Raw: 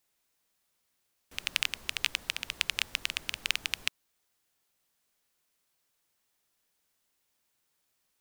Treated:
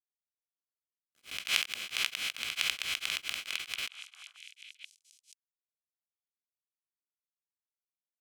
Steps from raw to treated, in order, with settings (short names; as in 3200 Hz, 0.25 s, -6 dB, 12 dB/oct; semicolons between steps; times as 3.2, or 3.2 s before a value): spectral swells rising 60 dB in 0.79 s; 1.49–2.41 HPF 100 Hz 24 dB/oct; 3.4–3.83 level quantiser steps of 16 dB; crossover distortion -41.5 dBFS; notch comb 910 Hz; delay with a stepping band-pass 0.484 s, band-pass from 1100 Hz, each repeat 1.4 oct, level -10.5 dB; beating tremolo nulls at 4.5 Hz